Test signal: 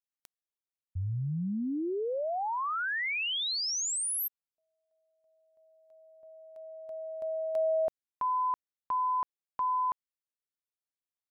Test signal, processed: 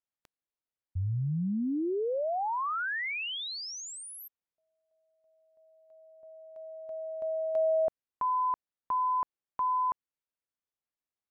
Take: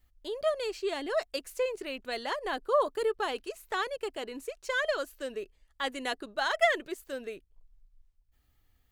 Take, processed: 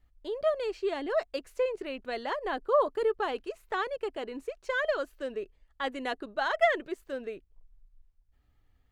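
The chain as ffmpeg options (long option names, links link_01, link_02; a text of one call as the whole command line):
ffmpeg -i in.wav -af "lowpass=frequency=1800:poles=1,volume=2dB" out.wav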